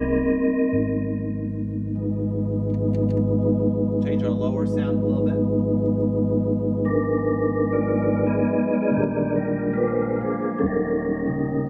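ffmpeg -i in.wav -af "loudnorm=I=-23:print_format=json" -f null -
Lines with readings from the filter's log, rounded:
"input_i" : "-22.9",
"input_tp" : "-7.5",
"input_lra" : "1.8",
"input_thresh" : "-32.9",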